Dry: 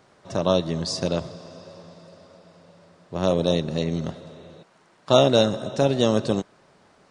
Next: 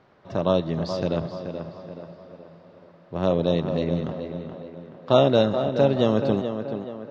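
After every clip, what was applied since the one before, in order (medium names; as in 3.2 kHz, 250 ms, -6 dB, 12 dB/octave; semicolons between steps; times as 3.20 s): distance through air 230 m; on a send: tape echo 428 ms, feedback 50%, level -7 dB, low-pass 2.7 kHz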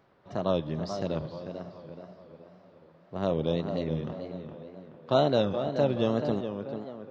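wow and flutter 130 cents; trim -6 dB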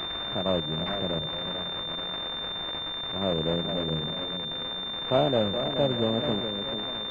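zero-crossing glitches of -19.5 dBFS; class-D stage that switches slowly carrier 3.6 kHz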